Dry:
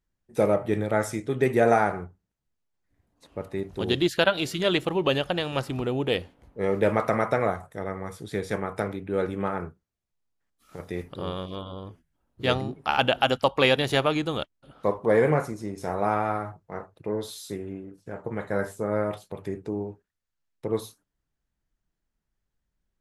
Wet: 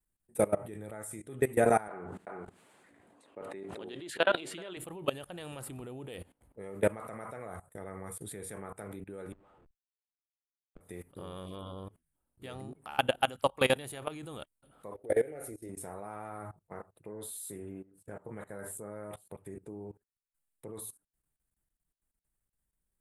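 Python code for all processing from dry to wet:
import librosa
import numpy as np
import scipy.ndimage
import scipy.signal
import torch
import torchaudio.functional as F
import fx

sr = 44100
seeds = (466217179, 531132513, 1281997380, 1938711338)

y = fx.chain(x, sr, fx.bandpass_edges(low_hz=280.0, high_hz=4000.0),
    fx.echo_single(ms=387, db=-15.5),
    fx.sustainer(db_per_s=22.0), at=(1.88, 4.77))
y = fx.chain(y, sr, fx.highpass(hz=550.0, slope=12),
    fx.schmitt(flips_db=-40.5),
    fx.spacing_loss(db_at_10k=39), at=(9.32, 10.81))
y = fx.chain(y, sr, fx.peak_eq(hz=7700.0, db=-7.5, octaves=0.51),
    fx.fixed_phaser(hz=430.0, stages=4), at=(14.94, 15.69))
y = fx.high_shelf_res(y, sr, hz=7100.0, db=9.5, q=3.0)
y = fx.level_steps(y, sr, step_db=20)
y = y * 10.0 ** (-3.0 / 20.0)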